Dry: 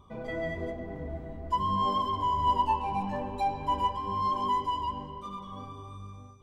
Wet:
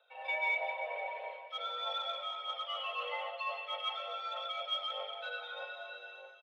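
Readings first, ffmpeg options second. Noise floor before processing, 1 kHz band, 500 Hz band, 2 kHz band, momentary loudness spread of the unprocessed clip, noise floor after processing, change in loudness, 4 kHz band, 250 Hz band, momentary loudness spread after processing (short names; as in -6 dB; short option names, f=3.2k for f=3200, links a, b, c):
-46 dBFS, -12.5 dB, -4.5 dB, +7.5 dB, 15 LU, -53 dBFS, -7.0 dB, +5.5 dB, under -40 dB, 9 LU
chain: -af "highpass=f=270:t=q:w=0.5412,highpass=f=270:t=q:w=1.307,lowpass=f=2.8k:t=q:w=0.5176,lowpass=f=2.8k:t=q:w=0.7071,lowpass=f=2.8k:t=q:w=1.932,afreqshift=290,tiltshelf=f=970:g=4,areverse,acompressor=threshold=-35dB:ratio=6,areverse,equalizer=f=2.4k:t=o:w=2.7:g=-12,dynaudnorm=f=160:g=3:m=11.5dB,aecho=1:1:553|1106|1659:0.1|0.039|0.0152,aexciter=amount=13.2:drive=8.6:freq=2k,aphaser=in_gain=1:out_gain=1:delay=2.1:decay=0.28:speed=1.6:type=triangular,volume=-7dB"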